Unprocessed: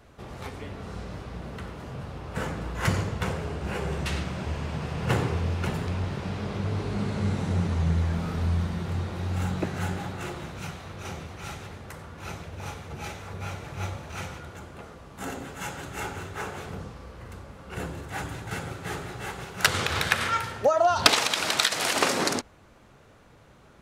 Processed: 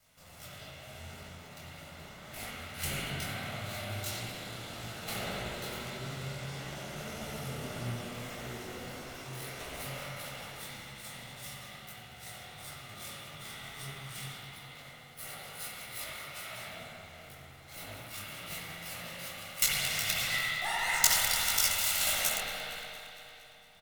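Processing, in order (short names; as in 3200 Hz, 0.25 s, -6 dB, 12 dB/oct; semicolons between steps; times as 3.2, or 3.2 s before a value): minimum comb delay 2.1 ms; pre-emphasis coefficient 0.9; de-hum 176.1 Hz, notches 9; pitch shift +6.5 st; feedback echo 0.23 s, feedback 59%, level -17 dB; spring tank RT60 3.1 s, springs 59 ms, chirp 35 ms, DRR -6 dB; detuned doubles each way 57 cents; gain +6 dB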